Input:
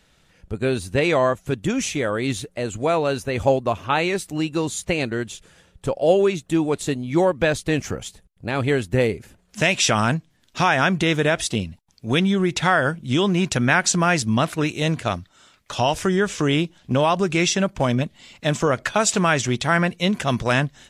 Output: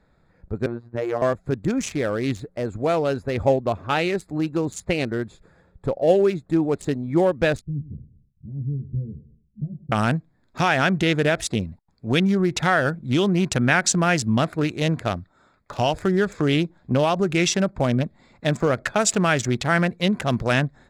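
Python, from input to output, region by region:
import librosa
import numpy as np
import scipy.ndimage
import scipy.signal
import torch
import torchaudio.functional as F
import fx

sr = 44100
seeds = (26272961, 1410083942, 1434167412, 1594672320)

y = fx.chain(x, sr, fx.lowpass(hz=1200.0, slope=12),
    fx.tilt_eq(slope=2.5),
    fx.robotise(hz=118.0), at=(0.66, 1.22))
y = fx.chain(y, sr, fx.ladder_lowpass(hz=210.0, resonance_pct=30),
    fx.doubler(ms=14.0, db=-3.0),
    fx.echo_feedback(ms=101, feedback_pct=38, wet_db=-15.5), at=(7.61, 9.92))
y = fx.wiener(y, sr, points=15)
y = fx.dynamic_eq(y, sr, hz=1000.0, q=3.1, threshold_db=-37.0, ratio=4.0, max_db=-5)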